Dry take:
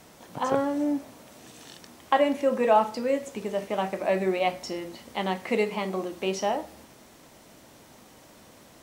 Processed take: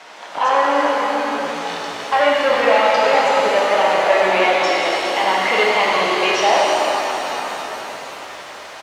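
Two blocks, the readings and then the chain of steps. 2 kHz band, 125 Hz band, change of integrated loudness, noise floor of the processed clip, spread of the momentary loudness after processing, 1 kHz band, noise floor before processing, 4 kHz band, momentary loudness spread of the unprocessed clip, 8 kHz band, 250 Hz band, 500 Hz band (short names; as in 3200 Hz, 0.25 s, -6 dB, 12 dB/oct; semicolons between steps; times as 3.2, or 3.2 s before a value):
+18.0 dB, n/a, +10.5 dB, -35 dBFS, 14 LU, +13.0 dB, -53 dBFS, +17.5 dB, 14 LU, +13.0 dB, +2.0 dB, +10.0 dB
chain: soft clip -21 dBFS, distortion -11 dB; BPF 790–3700 Hz; frequency-shifting echo 0.412 s, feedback 50%, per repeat -58 Hz, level -13.5 dB; maximiser +24.5 dB; shimmer reverb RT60 3.8 s, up +7 st, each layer -8 dB, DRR -4 dB; gain -8.5 dB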